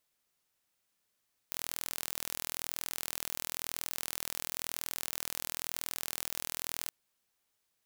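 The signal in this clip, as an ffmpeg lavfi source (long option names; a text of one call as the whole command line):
ffmpeg -f lavfi -i "aevalsrc='0.355*eq(mod(n,1076),0)':duration=5.39:sample_rate=44100" out.wav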